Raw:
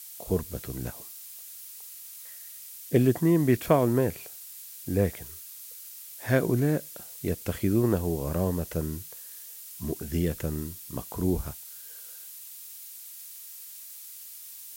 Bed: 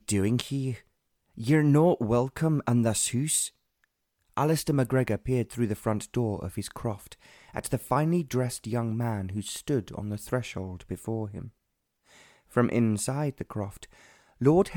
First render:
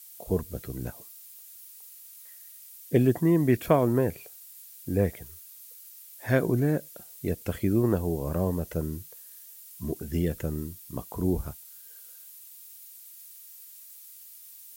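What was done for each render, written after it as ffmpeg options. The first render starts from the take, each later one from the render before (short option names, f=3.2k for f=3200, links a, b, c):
-af "afftdn=nr=7:nf=-45"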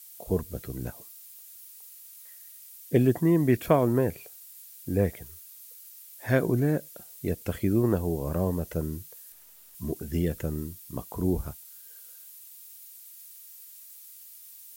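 -filter_complex "[0:a]asettb=1/sr,asplit=3[a][b][c];[a]atrim=end=9.324[d];[b]atrim=start=9.32:end=9.75,asetpts=PTS-STARTPTS,afade=t=in:d=0.004:c=qsin,afade=t=out:st=0.426:d=0.004:c=qsin,aeval=exprs='(tanh(282*val(0)+0.5)-tanh(0.5))/282':c=same[e];[c]atrim=start=9.746[f];[d][e]acrossfade=d=0.004:c1=hsin:c2=qsin[g];[g][f]acrossfade=d=0.004:c1=qsin:c2=hsin"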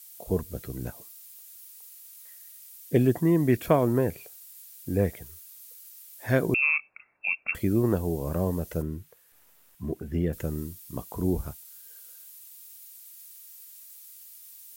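-filter_complex "[0:a]asettb=1/sr,asplit=3[a][b][c];[a]atrim=end=1.544[d];[b]atrim=start=1.54:end=2.14,asetpts=PTS-STARTPTS,afade=t=in:d=0.004:c=qsin,afade=t=out:st=0.596:d=0.004:c=qsin,highpass=f=290:w=0.5412,highpass=f=290:w=1.3066[e];[c]atrim=start=2.136[f];[d][e]acrossfade=d=0.004:c1=hsin:c2=qsin[g];[g][f]acrossfade=d=0.004:c1=qsin:c2=hsin,asettb=1/sr,asplit=3[h][i][j];[h]atrim=end=6.544[k];[i]atrim=start=6.54:end=7.55,asetpts=PTS-STARTPTS,afade=t=in:d=0.004:c=qsin,afade=t=out:st=1.006:d=0.004:c=qsin,lowpass=f=2.4k:t=q:w=0.5098,lowpass=f=2.4k:t=q:w=0.6013,lowpass=f=2.4k:t=q:w=0.9,lowpass=f=2.4k:t=q:w=2.563,afreqshift=-2800[l];[j]atrim=start=7.546[m];[k][l]acrossfade=d=0.004:c1=hsin:c2=qsin[n];[n][m]acrossfade=d=0.004:c1=qsin:c2=hsin,asettb=1/sr,asplit=3[o][p][q];[o]atrim=end=8.824[r];[p]atrim=start=8.82:end=10.33,asetpts=PTS-STARTPTS,afade=t=in:d=0.004:c=qsin,afade=t=out:st=1.506:d=0.004:c=qsin,acrossover=split=2700[s][t];[t]acompressor=threshold=-59dB:ratio=4:attack=1:release=60[u];[s][u]amix=inputs=2:normalize=0[v];[q]atrim=start=10.326[w];[r][v]acrossfade=d=0.004:c1=hsin:c2=qsin[x];[x][w]acrossfade=d=0.004:c1=qsin:c2=hsin"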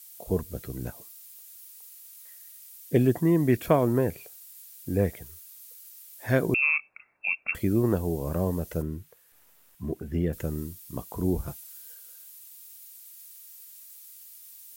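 -filter_complex "[0:a]asettb=1/sr,asplit=3[a][b][c];[a]atrim=end=11.474[d];[b]atrim=start=11.47:end=11.95,asetpts=PTS-STARTPTS,afade=t=in:d=0.004:c=qsin,afade=t=out:st=0.476:d=0.004:c=qsin,aecho=1:1:5.9:0.83,atrim=end_sample=21168[e];[c]atrim=start=11.946[f];[d][e]acrossfade=d=0.004:c1=hsin:c2=qsin[g];[g][f]acrossfade=d=0.004:c1=qsin:c2=hsin"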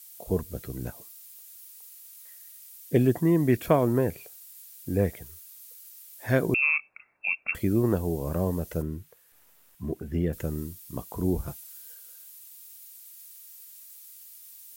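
-af anull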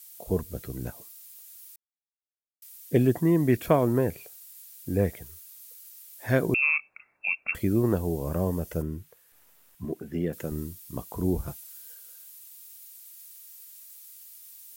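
-filter_complex "[0:a]asettb=1/sr,asplit=3[a][b][c];[a]atrim=end=8.274[d];[b]atrim=start=8.27:end=8.98,asetpts=PTS-STARTPTS,afade=t=in:d=0.004:c=qsin,afade=t=out:st=0.706:d=0.004:c=qsin,bandreject=f=4k:w=13[e];[c]atrim=start=8.976[f];[d][e]acrossfade=d=0.004:c1=hsin:c2=qsin[g];[g][f]acrossfade=d=0.004:c1=qsin:c2=hsin,asettb=1/sr,asplit=3[h][i][j];[h]atrim=end=9.854[k];[i]atrim=start=9.85:end=10.52,asetpts=PTS-STARTPTS,afade=t=in:d=0.004:c=qsin,afade=t=out:st=0.666:d=0.004:c=qsin,highpass=160[l];[j]atrim=start=10.516[m];[k][l]acrossfade=d=0.004:c1=hsin:c2=qsin[n];[n][m]acrossfade=d=0.004:c1=qsin:c2=hsin,asplit=3[o][p][q];[o]atrim=end=1.76,asetpts=PTS-STARTPTS,afade=t=out:st=1.756:d=0.004:c=hsin[r];[p]atrim=start=1.76:end=2.62,asetpts=PTS-STARTPTS,volume=0[s];[q]atrim=start=2.62,asetpts=PTS-STARTPTS,afade=t=in:d=0.004:c=hsin[t];[r][s][t]concat=n=3:v=0:a=1"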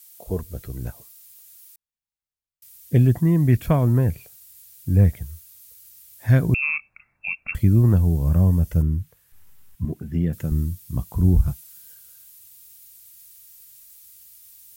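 -af "asubboost=boost=8.5:cutoff=140"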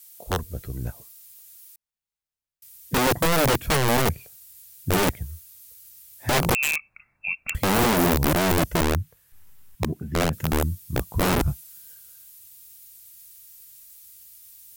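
-af "aeval=exprs='(mod(5.96*val(0)+1,2)-1)/5.96':c=same"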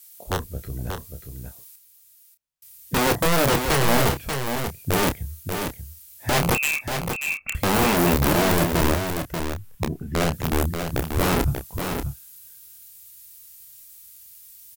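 -filter_complex "[0:a]asplit=2[a][b];[b]adelay=29,volume=-8.5dB[c];[a][c]amix=inputs=2:normalize=0,asplit=2[d][e];[e]aecho=0:1:586:0.473[f];[d][f]amix=inputs=2:normalize=0"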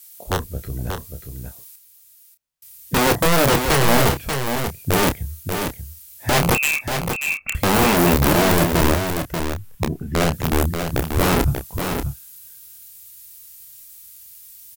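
-af "volume=3.5dB"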